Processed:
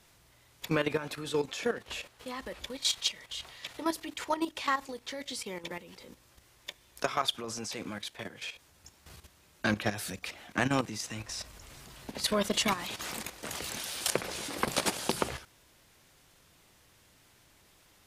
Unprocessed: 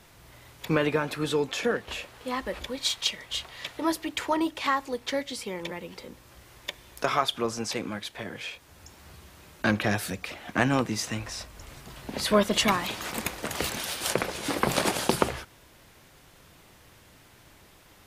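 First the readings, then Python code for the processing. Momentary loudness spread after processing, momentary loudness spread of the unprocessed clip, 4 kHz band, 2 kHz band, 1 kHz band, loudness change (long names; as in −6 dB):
15 LU, 14 LU, −3.5 dB, −5.0 dB, −5.5 dB, −4.5 dB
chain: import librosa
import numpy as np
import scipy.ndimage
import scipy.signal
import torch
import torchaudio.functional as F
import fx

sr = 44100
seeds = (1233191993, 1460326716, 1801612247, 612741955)

y = fx.peak_eq(x, sr, hz=7200.0, db=5.5, octaves=2.5)
y = fx.level_steps(y, sr, step_db=12)
y = y * 10.0 ** (-2.5 / 20.0)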